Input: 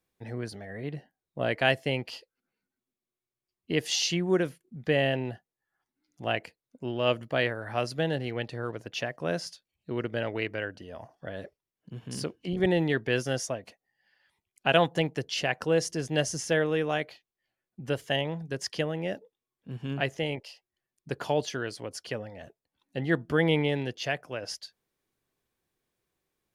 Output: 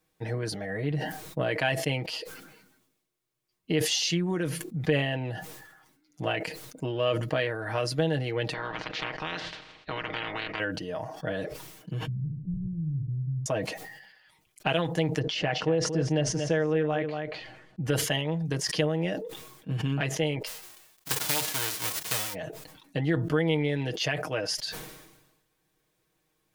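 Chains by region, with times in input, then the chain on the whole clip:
8.52–10.59 spectral limiter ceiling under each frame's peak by 29 dB + LPF 4000 Hz 24 dB/oct + compressor 4:1, threshold -38 dBFS
12.07–13.46 inverse Chebyshev low-pass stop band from 720 Hz, stop band 80 dB + flutter echo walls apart 12 m, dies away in 0.4 s + three-band squash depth 100%
15.19–17.86 tape spacing loss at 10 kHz 22 dB + echo 0.232 s -12 dB
20.46–22.33 spectral whitening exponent 0.1 + bell 150 Hz -13.5 dB 0.22 oct
whole clip: compressor 4:1, threshold -34 dBFS; comb 6.4 ms, depth 69%; sustainer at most 52 dB/s; gain +6 dB

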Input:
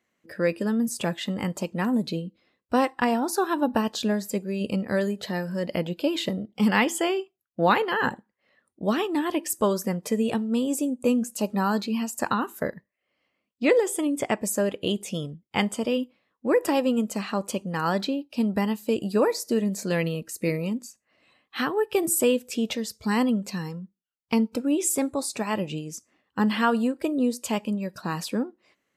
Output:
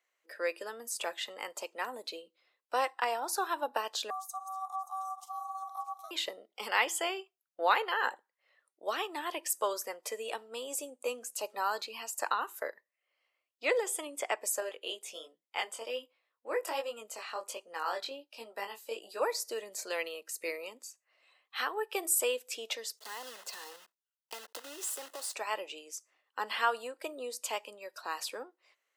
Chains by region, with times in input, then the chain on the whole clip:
4.1–6.11 regenerating reverse delay 0.289 s, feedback 52%, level -11 dB + Chebyshev band-stop 190–6700 Hz, order 3 + ring modulator 960 Hz
14.6–19.21 de-esser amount 35% + chorus 1.3 Hz, delay 17.5 ms, depth 5.3 ms
22.97–25.35 block floating point 3-bit + Butterworth band-stop 2300 Hz, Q 5.9 + compressor, threshold -29 dBFS
whole clip: Bessel high-pass 690 Hz, order 6; notch 1700 Hz, Q 27; gain -3.5 dB

